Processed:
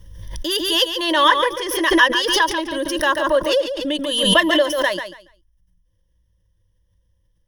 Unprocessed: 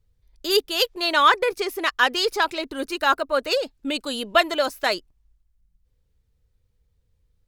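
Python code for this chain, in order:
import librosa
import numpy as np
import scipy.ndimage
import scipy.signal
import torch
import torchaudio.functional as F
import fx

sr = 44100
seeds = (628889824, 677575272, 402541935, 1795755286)

p1 = fx.ripple_eq(x, sr, per_octave=1.2, db=16)
p2 = p1 + fx.echo_feedback(p1, sr, ms=141, feedback_pct=21, wet_db=-9.0, dry=0)
p3 = fx.pre_swell(p2, sr, db_per_s=43.0)
y = p3 * 10.0 ** (-1.5 / 20.0)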